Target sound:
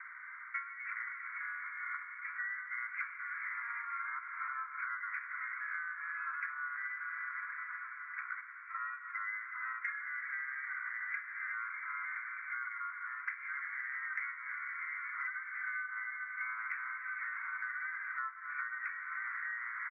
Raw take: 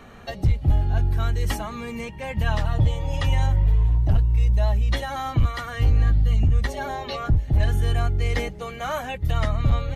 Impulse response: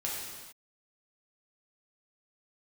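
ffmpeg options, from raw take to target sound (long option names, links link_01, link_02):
-filter_complex "[0:a]asplit=2[link_01][link_02];[1:a]atrim=start_sample=2205,asetrate=22491,aresample=44100[link_03];[link_02][link_03]afir=irnorm=-1:irlink=0,volume=-16dB[link_04];[link_01][link_04]amix=inputs=2:normalize=0,crystalizer=i=3.5:c=0,asetrate=22050,aresample=44100,asuperpass=centerf=1700:order=20:qfactor=1.6,asplit=2[link_05][link_06];[link_06]asetrate=35002,aresample=44100,atempo=1.25992,volume=-10dB[link_07];[link_05][link_07]amix=inputs=2:normalize=0,acompressor=threshold=-41dB:ratio=16,volume=4.5dB"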